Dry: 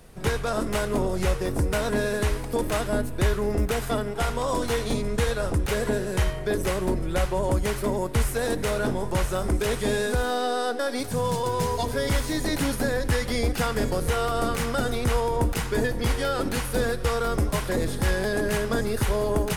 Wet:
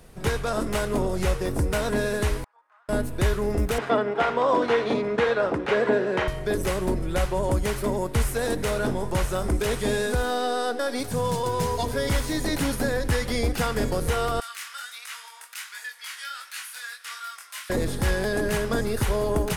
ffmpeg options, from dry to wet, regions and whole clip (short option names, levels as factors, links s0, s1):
-filter_complex "[0:a]asettb=1/sr,asplit=3[s0][s1][s2];[s0]atrim=end=2.444[s3];[s1]atrim=start=2.44:end=2.89,asetpts=PTS-STARTPTS,afade=t=in:d=0.004:c=qsin,afade=t=out:st=0.446:d=0.004:c=qsin,aderivative,acompressor=threshold=0.00501:ratio=2.5:attack=3.2:release=140:knee=1:detection=peak,asuperpass=centerf=1100:order=4:qfactor=1.6[s4];[s2]atrim=start=2.886[s5];[s3][s4]acrossfade=d=0.004:c1=hsin:c2=qsin[s6];[s6][s5]acrossfade=d=0.004:c1=qsin:c2=hsin,asettb=1/sr,asplit=3[s7][s8][s9];[s7]atrim=end=3.784[s10];[s8]atrim=start=3.78:end=6.28,asetpts=PTS-STARTPTS,afade=t=in:d=0.004:c=qsin,afade=t=out:st=2.496:d=0.004:c=qsin,highpass=280,lowpass=2500,acontrast=52[s11];[s9]atrim=start=6.276[s12];[s10][s11]acrossfade=d=0.004:c1=hsin:c2=qsin[s13];[s13][s12]acrossfade=d=0.004:c1=qsin:c2=hsin,asettb=1/sr,asplit=3[s14][s15][s16];[s14]atrim=end=14.404[s17];[s15]atrim=start=14.4:end=17.7,asetpts=PTS-STARTPTS,afade=t=in:d=0.004:c=qsin,afade=t=out:st=3.296:d=0.004:c=qsin,highpass=f=1400:w=0.5412,highpass=f=1400:w=1.3066,flanger=delay=20:depth=5.4:speed=1.4[s18];[s16]atrim=start=17.696[s19];[s17][s18]acrossfade=d=0.004:c1=hsin:c2=qsin[s20];[s20][s19]acrossfade=d=0.004:c1=qsin:c2=hsin"